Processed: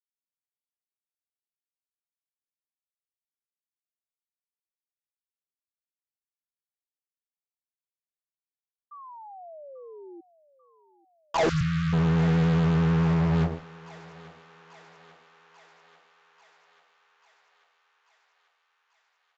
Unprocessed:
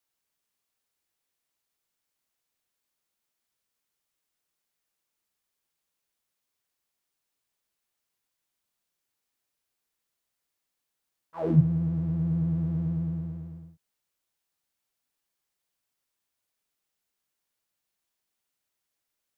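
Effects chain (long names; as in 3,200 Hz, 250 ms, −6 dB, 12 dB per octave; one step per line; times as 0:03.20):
noise gate −37 dBFS, range −13 dB
parametric band 810 Hz +13.5 dB 0.95 octaves
in parallel at −1 dB: compressor whose output falls as the input rises −40 dBFS, ratio −0.5
on the sum: fuzz pedal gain 37 dB, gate −38 dBFS
0:08.91–0:10.21: sound drawn into the spectrogram fall 330–1,200 Hz −37 dBFS
feedback echo with a high-pass in the loop 840 ms, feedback 71%, high-pass 520 Hz, level −16 dB
downsampling to 16,000 Hz
0:11.49–0:11.93: linear-phase brick-wall band-stop 170–1,100 Hz
level −7 dB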